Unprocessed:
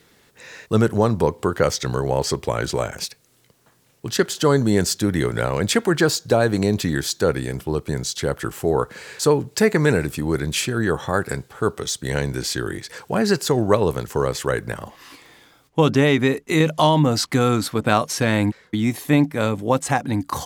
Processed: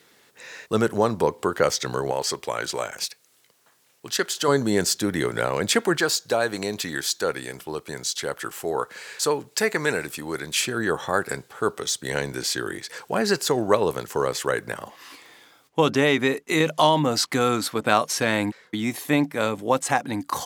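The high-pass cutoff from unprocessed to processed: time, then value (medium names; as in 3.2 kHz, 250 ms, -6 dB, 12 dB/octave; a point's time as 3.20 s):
high-pass 6 dB/octave
360 Hz
from 2.11 s 840 Hz
from 4.48 s 330 Hz
from 5.97 s 840 Hz
from 10.60 s 390 Hz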